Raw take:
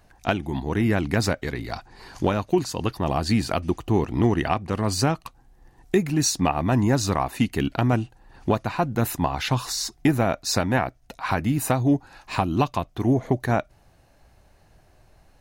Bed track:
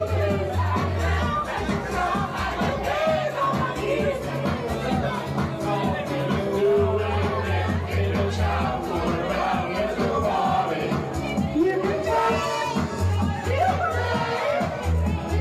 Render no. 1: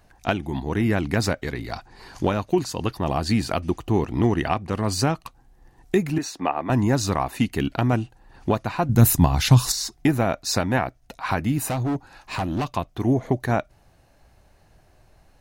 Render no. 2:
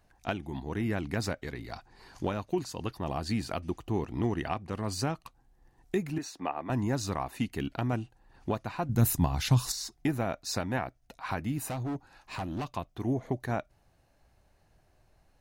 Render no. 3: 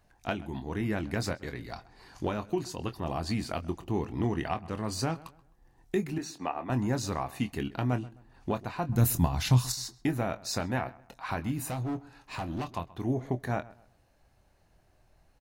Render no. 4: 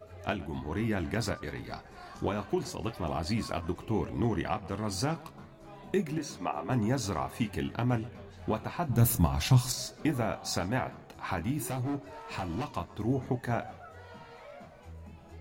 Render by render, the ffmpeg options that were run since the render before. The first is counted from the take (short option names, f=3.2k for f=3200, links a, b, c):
-filter_complex "[0:a]asettb=1/sr,asplit=3[a][b][c];[a]atrim=end=6.184[d];[b]atrim=start=6.18:end=6.7,asetpts=PTS-STARTPTS,afade=t=in:d=0.004:c=qsin,afade=t=out:st=0.516:d=0.004:c=qsin,acrossover=split=270 2800:gain=0.112 1 0.224[e][f][g];[e][f][g]amix=inputs=3:normalize=0[h];[c]atrim=start=6.696[i];[d][h]acrossfade=d=0.004:c1=hsin:c2=qsin[j];[j][i]acrossfade=d=0.004:c1=qsin:c2=hsin,asettb=1/sr,asplit=3[k][l][m];[k]atrim=end=8.894[n];[l]atrim=start=8.89:end=9.72,asetpts=PTS-STARTPTS,afade=t=in:d=0.004:c=qsin,afade=t=out:st=0.826:d=0.004:c=qsin,bass=f=250:g=12,treble=f=4k:g=11[o];[m]atrim=start=9.716[p];[n][o]acrossfade=d=0.004:c1=hsin:c2=qsin[q];[q][p]acrossfade=d=0.004:c1=qsin:c2=hsin,asettb=1/sr,asplit=3[r][s][t];[r]atrim=end=11.664[u];[s]atrim=start=11.66:end=12.71,asetpts=PTS-STARTPTS,afade=t=in:d=0.004:c=qsin,afade=t=out:st=1.046:d=0.004:c=qsin,volume=21.5dB,asoftclip=hard,volume=-21.5dB[v];[t]atrim=start=12.706[w];[u][v]acrossfade=d=0.004:c1=hsin:c2=qsin[x];[x][w]acrossfade=d=0.004:c1=qsin:c2=hsin"
-af "volume=-9.5dB"
-filter_complex "[0:a]asplit=2[a][b];[b]adelay=24,volume=-10dB[c];[a][c]amix=inputs=2:normalize=0,asplit=2[d][e];[e]adelay=130,lowpass=f=3k:p=1,volume=-20dB,asplit=2[f][g];[g]adelay=130,lowpass=f=3k:p=1,volume=0.32,asplit=2[h][i];[i]adelay=130,lowpass=f=3k:p=1,volume=0.32[j];[d][f][h][j]amix=inputs=4:normalize=0"
-filter_complex "[1:a]volume=-25dB[a];[0:a][a]amix=inputs=2:normalize=0"